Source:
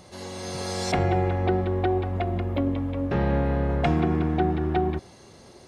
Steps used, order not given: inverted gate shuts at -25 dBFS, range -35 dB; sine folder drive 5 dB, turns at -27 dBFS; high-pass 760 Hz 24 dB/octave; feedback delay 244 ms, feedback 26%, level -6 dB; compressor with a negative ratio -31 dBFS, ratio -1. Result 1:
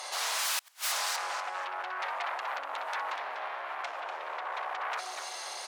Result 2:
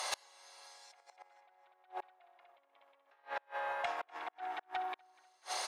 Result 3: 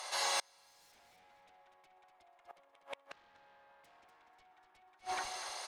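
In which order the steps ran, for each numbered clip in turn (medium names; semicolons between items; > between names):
compressor with a negative ratio > feedback delay > sine folder > inverted gate > high-pass; feedback delay > compressor with a negative ratio > inverted gate > high-pass > sine folder; high-pass > sine folder > compressor with a negative ratio > feedback delay > inverted gate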